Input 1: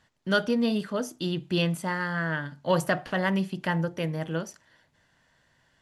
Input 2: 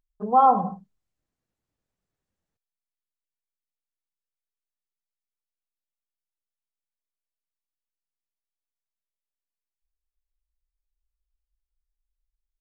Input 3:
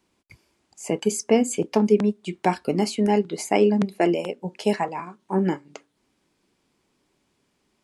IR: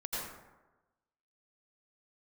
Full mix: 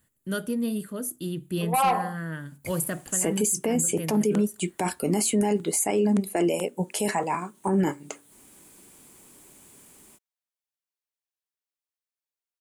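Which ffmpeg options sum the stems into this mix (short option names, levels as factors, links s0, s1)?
-filter_complex "[0:a]firequalizer=gain_entry='entry(350,0);entry(790,-12);entry(1200,-7)':delay=0.05:min_phase=1,aexciter=amount=12.4:drive=7.1:freq=8000,volume=0.794[s0];[1:a]highpass=400,asoftclip=type=tanh:threshold=0.126,adelay=1400,volume=1.06[s1];[2:a]dynaudnorm=f=200:g=3:m=6.31,aexciter=amount=5.4:drive=7.7:freq=7200,adelay=2350,volume=0.668[s2];[s0][s1][s2]amix=inputs=3:normalize=0,alimiter=limit=0.168:level=0:latency=1:release=20"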